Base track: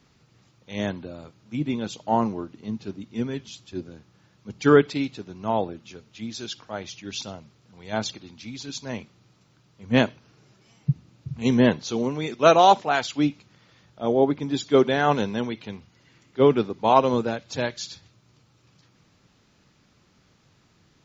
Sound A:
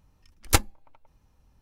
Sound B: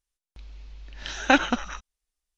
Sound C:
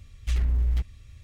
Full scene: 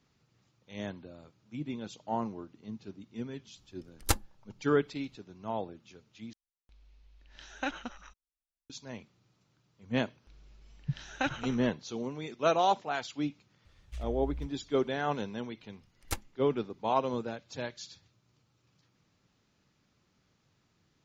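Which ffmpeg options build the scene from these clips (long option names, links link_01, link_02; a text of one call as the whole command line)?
ffmpeg -i bed.wav -i cue0.wav -i cue1.wav -i cue2.wav -filter_complex "[1:a]asplit=2[link_01][link_02];[2:a]asplit=2[link_03][link_04];[0:a]volume=-11dB[link_05];[link_01]equalizer=frequency=2300:width=3.8:gain=-5[link_06];[link_05]asplit=2[link_07][link_08];[link_07]atrim=end=6.334[link_09];[link_03]atrim=end=2.37,asetpts=PTS-STARTPTS,volume=-16dB[link_10];[link_08]atrim=start=8.696[link_11];[link_06]atrim=end=1.61,asetpts=PTS-STARTPTS,volume=-7dB,afade=type=in:duration=0.004:curve=hsin,afade=type=out:start_time=1.606:duration=0.004:curve=hsin,adelay=3560[link_12];[link_04]atrim=end=2.37,asetpts=PTS-STARTPTS,volume=-13dB,afade=type=in:duration=0.004:curve=hsin,afade=type=out:start_time=2.366:duration=0.004:curve=hsin,adelay=9910[link_13];[3:a]atrim=end=1.23,asetpts=PTS-STARTPTS,volume=-15dB,afade=type=in:duration=0.004:curve=hsin,afade=type=out:start_time=1.226:duration=0.004:curve=hsin,adelay=13650[link_14];[link_02]atrim=end=1.61,asetpts=PTS-STARTPTS,volume=-15dB,afade=type=in:duration=0.004:curve=hsin,afade=type=out:start_time=1.606:duration=0.004:curve=hsin,adelay=15580[link_15];[link_09][link_10]acrossfade=duration=0.004:curve1=hsin:curve2=hsin[link_16];[link_16][link_11]acrossfade=duration=0.004:curve1=hsin:curve2=hsin[link_17];[link_17][link_12][link_13][link_14][link_15]amix=inputs=5:normalize=0" out.wav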